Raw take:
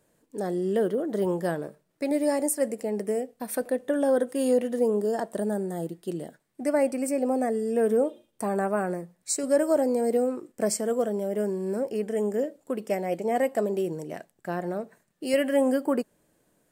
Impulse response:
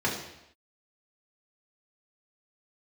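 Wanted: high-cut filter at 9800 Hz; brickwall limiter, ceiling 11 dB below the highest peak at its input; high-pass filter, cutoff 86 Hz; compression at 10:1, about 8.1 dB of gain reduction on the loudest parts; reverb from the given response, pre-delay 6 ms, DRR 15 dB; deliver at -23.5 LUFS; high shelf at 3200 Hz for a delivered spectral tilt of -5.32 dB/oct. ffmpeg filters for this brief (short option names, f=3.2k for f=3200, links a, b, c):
-filter_complex "[0:a]highpass=86,lowpass=9.8k,highshelf=f=3.2k:g=-7,acompressor=threshold=-26dB:ratio=10,alimiter=level_in=4dB:limit=-24dB:level=0:latency=1,volume=-4dB,asplit=2[a][b];[1:a]atrim=start_sample=2205,adelay=6[c];[b][c]afir=irnorm=-1:irlink=0,volume=-26dB[d];[a][d]amix=inputs=2:normalize=0,volume=13dB"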